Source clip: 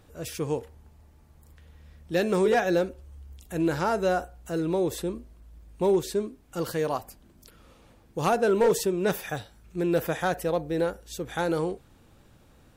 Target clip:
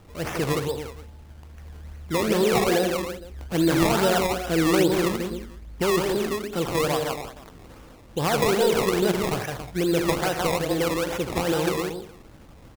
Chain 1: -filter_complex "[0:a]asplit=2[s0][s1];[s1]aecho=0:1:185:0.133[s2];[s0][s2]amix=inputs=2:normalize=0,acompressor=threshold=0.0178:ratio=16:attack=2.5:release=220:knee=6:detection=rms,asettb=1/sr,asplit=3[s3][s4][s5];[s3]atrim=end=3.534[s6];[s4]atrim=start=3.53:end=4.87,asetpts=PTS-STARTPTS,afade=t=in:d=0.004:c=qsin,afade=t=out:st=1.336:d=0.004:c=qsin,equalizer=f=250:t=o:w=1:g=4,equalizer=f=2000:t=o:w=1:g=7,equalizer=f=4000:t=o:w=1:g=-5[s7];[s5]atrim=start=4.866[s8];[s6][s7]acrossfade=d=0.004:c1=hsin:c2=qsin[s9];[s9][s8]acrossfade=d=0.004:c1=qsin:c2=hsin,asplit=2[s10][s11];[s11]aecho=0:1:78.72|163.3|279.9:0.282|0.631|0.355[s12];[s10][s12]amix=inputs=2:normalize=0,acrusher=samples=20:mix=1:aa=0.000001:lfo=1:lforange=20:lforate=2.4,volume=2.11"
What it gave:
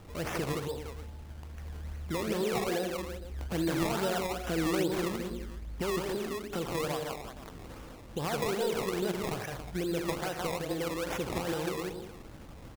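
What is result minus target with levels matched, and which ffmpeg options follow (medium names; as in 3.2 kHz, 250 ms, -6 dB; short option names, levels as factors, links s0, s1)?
compression: peak gain reduction +10.5 dB
-filter_complex "[0:a]asplit=2[s0][s1];[s1]aecho=0:1:185:0.133[s2];[s0][s2]amix=inputs=2:normalize=0,acompressor=threshold=0.0631:ratio=16:attack=2.5:release=220:knee=6:detection=rms,asettb=1/sr,asplit=3[s3][s4][s5];[s3]atrim=end=3.534[s6];[s4]atrim=start=3.53:end=4.87,asetpts=PTS-STARTPTS,afade=t=in:d=0.004:c=qsin,afade=t=out:st=1.336:d=0.004:c=qsin,equalizer=f=250:t=o:w=1:g=4,equalizer=f=2000:t=o:w=1:g=7,equalizer=f=4000:t=o:w=1:g=-5[s7];[s5]atrim=start=4.866[s8];[s6][s7]acrossfade=d=0.004:c1=hsin:c2=qsin[s9];[s9][s8]acrossfade=d=0.004:c1=qsin:c2=hsin,asplit=2[s10][s11];[s11]aecho=0:1:78.72|163.3|279.9:0.282|0.631|0.355[s12];[s10][s12]amix=inputs=2:normalize=0,acrusher=samples=20:mix=1:aa=0.000001:lfo=1:lforange=20:lforate=2.4,volume=2.11"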